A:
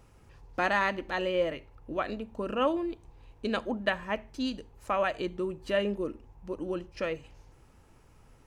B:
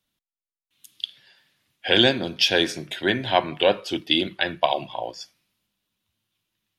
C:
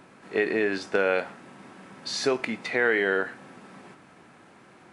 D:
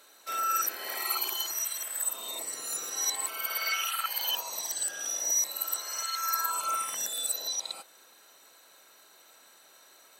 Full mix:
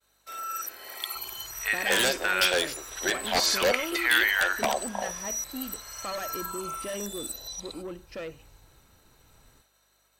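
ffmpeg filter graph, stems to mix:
-filter_complex "[0:a]asoftclip=type=tanh:threshold=0.0335,adelay=1150,volume=0.794[s0];[1:a]afwtdn=0.02,highpass=f=440:w=0.5412,highpass=f=440:w=1.3066,aeval=exprs='0.178*(abs(mod(val(0)/0.178+3,4)-2)-1)':c=same,volume=0.75[s1];[2:a]highpass=f=990:w=0.5412,highpass=f=990:w=1.3066,highshelf=f=5300:g=10.5,adelay=1300,volume=1.19[s2];[3:a]acontrast=83,aeval=exprs='val(0)+0.00112*(sin(2*PI*50*n/s)+sin(2*PI*2*50*n/s)/2+sin(2*PI*3*50*n/s)/3+sin(2*PI*4*50*n/s)/4+sin(2*PI*5*50*n/s)/5)':c=same,volume=0.224[s3];[s0][s1][s2][s3]amix=inputs=4:normalize=0,agate=range=0.0224:threshold=0.00141:ratio=3:detection=peak"

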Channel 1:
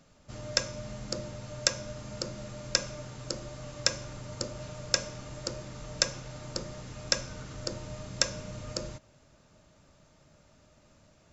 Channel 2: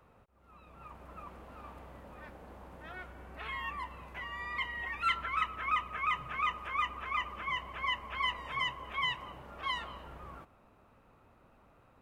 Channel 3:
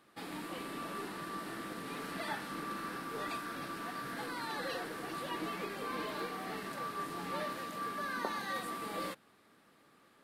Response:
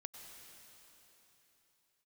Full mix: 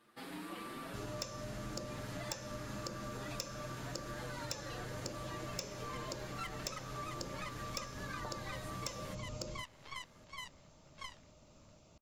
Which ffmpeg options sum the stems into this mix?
-filter_complex "[0:a]equalizer=f=1700:w=3.3:g=-13,asoftclip=type=tanh:threshold=0.119,adelay=650,volume=0.944[s0];[1:a]aeval=exprs='0.1*(cos(1*acos(clip(val(0)/0.1,-1,1)))-cos(1*PI/2))+0.00398*(cos(3*acos(clip(val(0)/0.1,-1,1)))-cos(3*PI/2))+0.0141*(cos(7*acos(clip(val(0)/0.1,-1,1)))-cos(7*PI/2))+0.00631*(cos(8*acos(clip(val(0)/0.1,-1,1)))-cos(8*PI/2))':c=same,tremolo=f=0.95:d=0.53,adelay=1350,volume=0.473[s1];[2:a]asplit=2[s2][s3];[s3]adelay=6.4,afreqshift=1.7[s4];[s2][s4]amix=inputs=2:normalize=1,volume=1[s5];[s0][s1][s5]amix=inputs=3:normalize=0,acompressor=threshold=0.01:ratio=4"

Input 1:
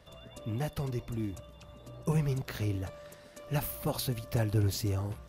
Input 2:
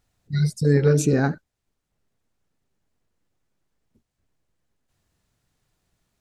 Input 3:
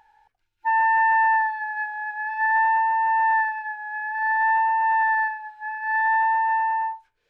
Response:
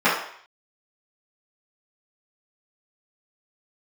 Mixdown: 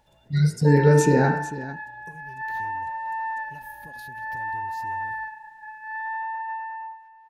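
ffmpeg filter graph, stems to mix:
-filter_complex "[0:a]acompressor=threshold=0.0178:ratio=6,volume=0.316[s0];[1:a]volume=0.841,asplit=3[s1][s2][s3];[s2]volume=0.0841[s4];[s3]volume=0.224[s5];[2:a]volume=0.316,asplit=2[s6][s7];[s7]volume=0.133[s8];[3:a]atrim=start_sample=2205[s9];[s4][s9]afir=irnorm=-1:irlink=0[s10];[s5][s8]amix=inputs=2:normalize=0,aecho=0:1:448:1[s11];[s0][s1][s6][s10][s11]amix=inputs=5:normalize=0,asuperstop=centerf=1200:order=4:qfactor=7.4"

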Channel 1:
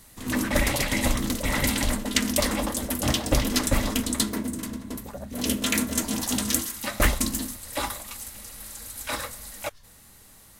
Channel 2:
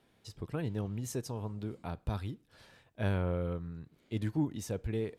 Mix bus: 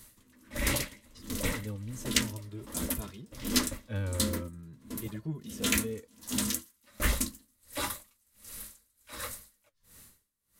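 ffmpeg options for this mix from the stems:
-filter_complex "[0:a]highshelf=f=8200:g=4,flanger=delay=8:depth=7.6:regen=-51:speed=0.62:shape=triangular,aeval=exprs='val(0)*pow(10,-34*(0.5-0.5*cos(2*PI*1.4*n/s))/20)':c=same,volume=1.19[s0];[1:a]asplit=2[s1][s2];[s2]adelay=2.4,afreqshift=0.45[s3];[s1][s3]amix=inputs=2:normalize=1,adelay=900,volume=0.944[s4];[s0][s4]amix=inputs=2:normalize=0,volume=3.55,asoftclip=hard,volume=0.282,equalizer=f=760:t=o:w=0.28:g=-12"

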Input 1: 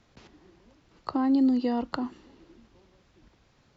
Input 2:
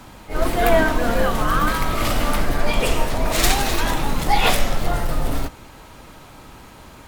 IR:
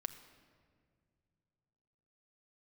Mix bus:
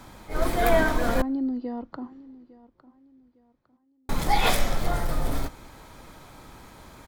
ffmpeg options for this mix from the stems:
-filter_complex "[0:a]lowpass=f=1300:p=1,volume=0.562,afade=t=out:st=2.16:d=0.5:silence=0.398107,asplit=2[s0][s1];[s1]volume=0.106[s2];[1:a]volume=0.531,asplit=3[s3][s4][s5];[s3]atrim=end=1.22,asetpts=PTS-STARTPTS,afade=t=out:st=1.216:d=0.004:c=hsin[s6];[s4]atrim=start=1.22:end=4.09,asetpts=PTS-STARTPTS,volume=0[s7];[s5]atrim=start=4.09,asetpts=PTS-STARTPTS,afade=t=in:d=0.004:c=hsin[s8];[s6][s7][s8]concat=n=3:v=0:a=1,asplit=2[s9][s10];[s10]volume=0.126[s11];[2:a]atrim=start_sample=2205[s12];[s11][s12]afir=irnorm=-1:irlink=0[s13];[s2]aecho=0:1:856|1712|2568|3424:1|0.31|0.0961|0.0298[s14];[s0][s9][s13][s14]amix=inputs=4:normalize=0,bandreject=f=2800:w=9"

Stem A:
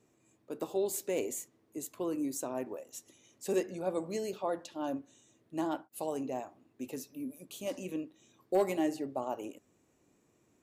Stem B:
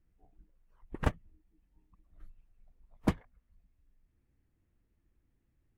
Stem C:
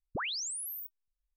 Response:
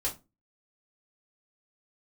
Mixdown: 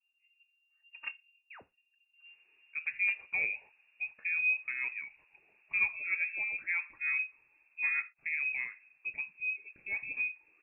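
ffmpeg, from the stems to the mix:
-filter_complex "[0:a]adelay=2250,volume=1[s0];[1:a]aecho=1:1:3.2:0.96,volume=0.141,asplit=2[s1][s2];[s2]volume=0.133[s3];[2:a]alimiter=level_in=3.76:limit=0.0631:level=0:latency=1,volume=0.266,adelay=1350,volume=0.211,asplit=2[s4][s5];[s5]volume=0.282[s6];[3:a]atrim=start_sample=2205[s7];[s3][s6]amix=inputs=2:normalize=0[s8];[s8][s7]afir=irnorm=-1:irlink=0[s9];[s0][s1][s4][s9]amix=inputs=4:normalize=0,equalizer=f=290:w=6.9:g=6,lowpass=f=2400:t=q:w=0.5098,lowpass=f=2400:t=q:w=0.6013,lowpass=f=2400:t=q:w=0.9,lowpass=f=2400:t=q:w=2.563,afreqshift=-2800"

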